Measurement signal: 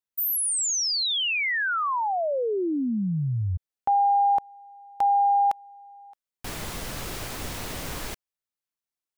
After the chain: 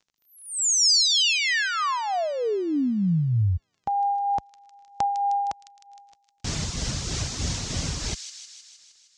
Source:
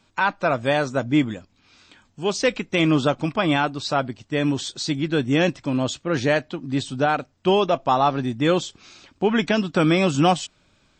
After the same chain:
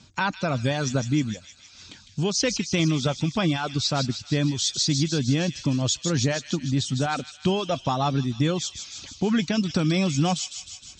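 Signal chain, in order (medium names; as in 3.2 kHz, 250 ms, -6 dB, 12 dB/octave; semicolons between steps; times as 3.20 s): reverb removal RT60 0.65 s; tremolo 3.2 Hz, depth 49%; in parallel at +1 dB: peak limiter -16 dBFS; on the sum: high-pass 45 Hz; tone controls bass +13 dB, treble +12 dB; compression 2.5:1, threshold -19 dBFS; crackle 21 per s -46 dBFS; steep low-pass 6.8 kHz 36 dB/octave; treble shelf 4.7 kHz +4.5 dB; on a send: feedback echo behind a high-pass 155 ms, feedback 65%, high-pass 3.3 kHz, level -5.5 dB; on the sum: trim -4 dB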